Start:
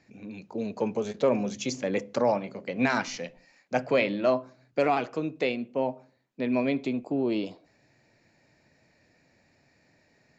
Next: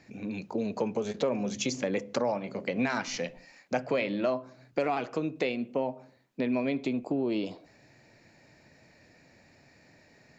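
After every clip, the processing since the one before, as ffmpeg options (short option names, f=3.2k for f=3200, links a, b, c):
-af "acompressor=threshold=-34dB:ratio=3,volume=5.5dB"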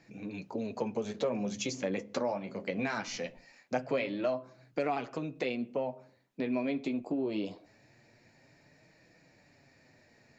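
-af "flanger=delay=5.9:depth=5.7:regen=-35:speed=0.22:shape=triangular"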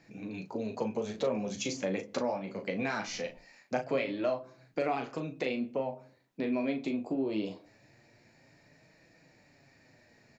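-filter_complex "[0:a]asplit=2[a][b];[b]adelay=37,volume=-7.5dB[c];[a][c]amix=inputs=2:normalize=0"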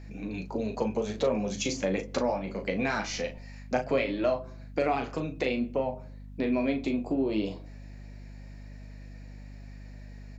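-af "aeval=exprs='val(0)+0.00447*(sin(2*PI*50*n/s)+sin(2*PI*2*50*n/s)/2+sin(2*PI*3*50*n/s)/3+sin(2*PI*4*50*n/s)/4+sin(2*PI*5*50*n/s)/5)':c=same,volume=4dB"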